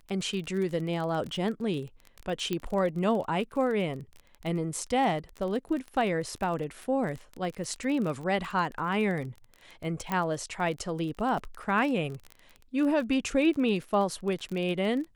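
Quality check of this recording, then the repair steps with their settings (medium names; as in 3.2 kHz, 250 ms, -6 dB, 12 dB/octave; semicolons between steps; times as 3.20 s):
crackle 27 per s -33 dBFS
2.53 s: pop -17 dBFS
10.12 s: pop -16 dBFS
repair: de-click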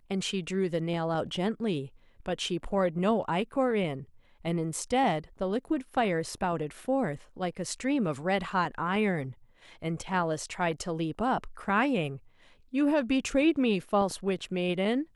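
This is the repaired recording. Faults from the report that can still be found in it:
nothing left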